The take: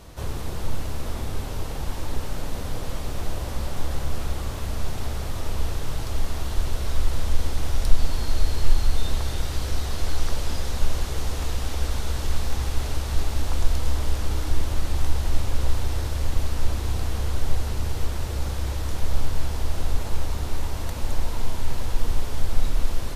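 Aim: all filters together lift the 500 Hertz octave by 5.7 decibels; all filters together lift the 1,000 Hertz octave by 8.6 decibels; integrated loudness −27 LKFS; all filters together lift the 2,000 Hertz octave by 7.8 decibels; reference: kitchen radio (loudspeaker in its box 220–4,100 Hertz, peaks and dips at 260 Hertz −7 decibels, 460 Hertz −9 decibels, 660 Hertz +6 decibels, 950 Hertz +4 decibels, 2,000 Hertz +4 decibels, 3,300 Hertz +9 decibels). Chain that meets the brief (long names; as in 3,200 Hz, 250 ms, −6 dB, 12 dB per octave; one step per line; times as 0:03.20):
loudspeaker in its box 220–4,100 Hz, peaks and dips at 260 Hz −7 dB, 460 Hz −9 dB, 660 Hz +6 dB, 950 Hz +4 dB, 2,000 Hz +4 dB, 3,300 Hz +9 dB
parametric band 500 Hz +6.5 dB
parametric band 1,000 Hz +3.5 dB
parametric band 2,000 Hz +5 dB
level +4 dB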